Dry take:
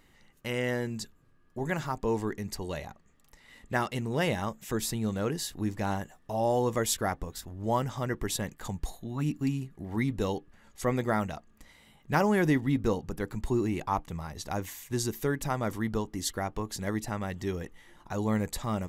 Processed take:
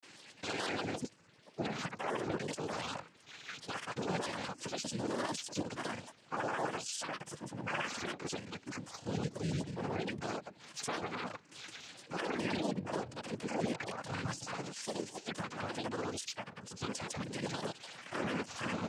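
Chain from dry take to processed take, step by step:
pitch shifter gated in a rhythm +10.5 semitones, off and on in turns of 65 ms
spectral tilt +2 dB per octave
downward compressor 6 to 1, threshold −38 dBFS, peak gain reduction 17 dB
brickwall limiter −34 dBFS, peak gain reduction 10.5 dB
cochlear-implant simulation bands 8
harmonic and percussive parts rebalanced percussive −5 dB
granular cloud, pitch spread up and down by 3 semitones
level +11.5 dB

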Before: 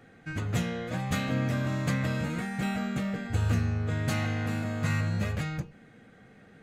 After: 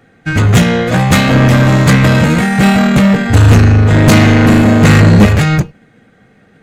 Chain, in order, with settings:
0:03.94–0:05.26: hollow resonant body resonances 200/300/430 Hz, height 8 dB
soft clipping −29.5 dBFS, distortion −9 dB
boost into a limiter +34 dB
expander for the loud parts 2.5 to 1, over −20 dBFS

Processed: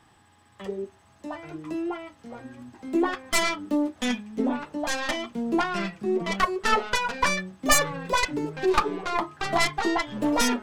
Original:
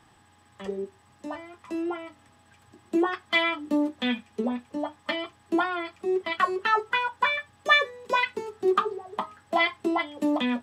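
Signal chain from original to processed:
stylus tracing distortion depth 0.31 ms
delay with pitch and tempo change per echo 677 ms, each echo −4 semitones, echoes 3, each echo −6 dB

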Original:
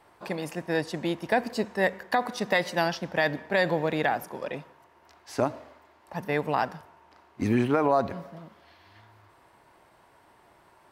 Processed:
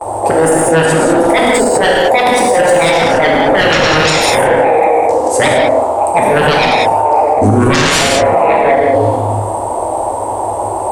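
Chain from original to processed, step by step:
volume swells 153 ms
in parallel at +2 dB: downward compressor 4 to 1, threshold −45 dBFS, peak gain reduction 21.5 dB
on the sum: drawn EQ curve 110 Hz 0 dB, 160 Hz −19 dB, 250 Hz −2 dB, 380 Hz +3 dB, 830 Hz +10 dB, 1,600 Hz −22 dB, 5,500 Hz −14 dB, 8,600 Hz +9 dB, 13,000 Hz −14 dB
on a send: echo through a band-pass that steps 187 ms, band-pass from 2,800 Hz, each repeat −0.7 octaves, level −6 dB
on the sum: noise gate with hold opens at −38 dBFS
sine wavefolder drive 15 dB, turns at −10.5 dBFS
reverb whose tail is shaped and stops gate 230 ms flat, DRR −3 dB
boost into a limiter +8 dB
level −1 dB

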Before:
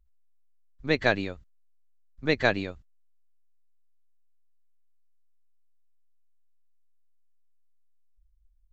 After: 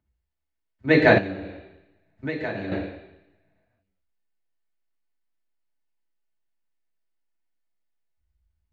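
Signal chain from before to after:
convolution reverb RT60 0.90 s, pre-delay 3 ms, DRR −3 dB
0:01.18–0:02.72: downward compressor 5 to 1, threshold −24 dBFS, peak gain reduction 16.5 dB
level −4.5 dB

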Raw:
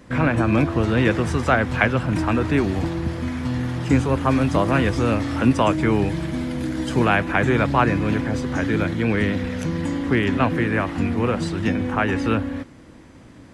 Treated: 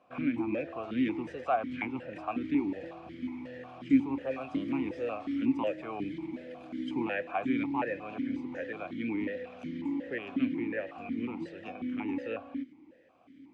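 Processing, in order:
formant filter that steps through the vowels 5.5 Hz
level −2.5 dB

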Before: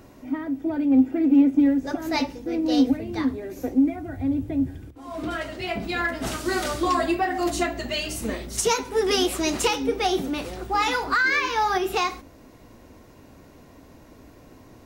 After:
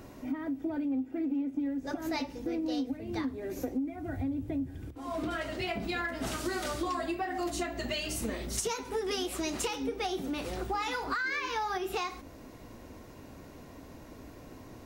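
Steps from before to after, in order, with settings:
downward compressor 6 to 1, threshold −31 dBFS, peak gain reduction 17 dB

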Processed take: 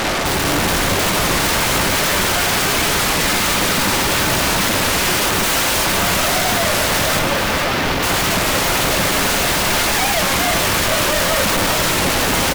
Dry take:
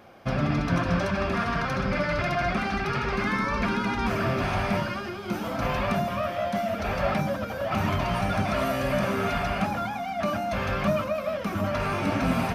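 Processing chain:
sub-octave generator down 1 octave, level −4 dB
0:05.43–0:05.85: high-pass filter 1,300 Hz 6 dB per octave
downward compressor, threshold −27 dBFS, peak gain reduction 9 dB
fuzz pedal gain 44 dB, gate −53 dBFS
flanger 1.9 Hz, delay 0.7 ms, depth 4.1 ms, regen −52%
sine wavefolder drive 18 dB, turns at −11.5 dBFS
0:07.19–0:08.03: moving average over 5 samples
echo with shifted repeats 452 ms, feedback 53%, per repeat −75 Hz, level −7 dB
on a send at −10.5 dB: convolution reverb RT60 0.35 s, pre-delay 3 ms
on the sum: wow of a warped record 33 1/3 rpm, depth 160 cents
level −3 dB

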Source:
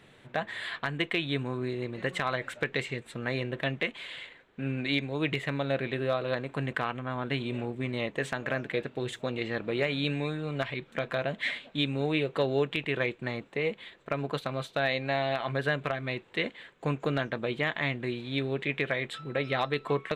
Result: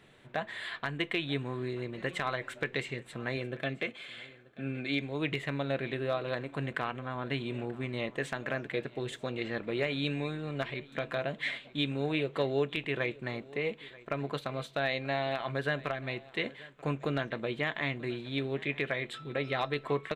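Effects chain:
0:03.37–0:05.01: notch comb filter 960 Hz
single-tap delay 934 ms −21 dB
on a send at −17 dB: convolution reverb RT60 0.35 s, pre-delay 3 ms
on the sum: level −3 dB

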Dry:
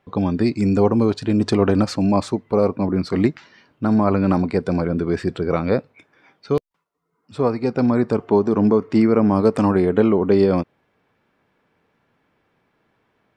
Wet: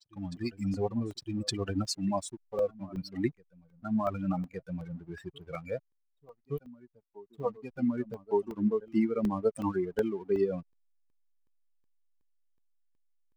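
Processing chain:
spectral dynamics exaggerated over time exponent 3
bass and treble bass −2 dB, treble +11 dB
slack as between gear wheels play −48 dBFS
on a send: backwards echo 1,165 ms −21.5 dB
on the sum: regular buffer underruns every 0.37 s, samples 64, zero, from 0:00.37
level −6 dB

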